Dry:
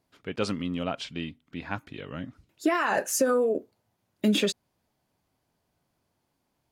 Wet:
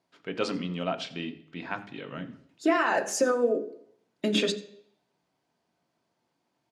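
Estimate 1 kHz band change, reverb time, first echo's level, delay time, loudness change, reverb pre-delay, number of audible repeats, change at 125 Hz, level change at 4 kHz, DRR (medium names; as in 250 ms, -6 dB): +0.5 dB, 0.65 s, -19.5 dB, 86 ms, -1.0 dB, 3 ms, 1, -2.5 dB, 0.0 dB, 7.5 dB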